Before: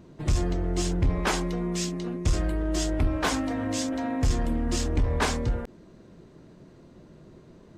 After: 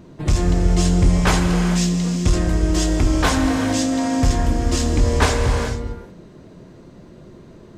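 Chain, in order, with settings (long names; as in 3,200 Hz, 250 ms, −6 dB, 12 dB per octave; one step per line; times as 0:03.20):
reverb whose tail is shaped and stops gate 470 ms flat, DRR 4 dB
level +6.5 dB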